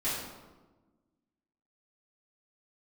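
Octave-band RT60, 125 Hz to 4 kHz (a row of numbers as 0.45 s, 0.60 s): 1.6 s, 1.8 s, 1.3 s, 1.2 s, 0.90 s, 0.75 s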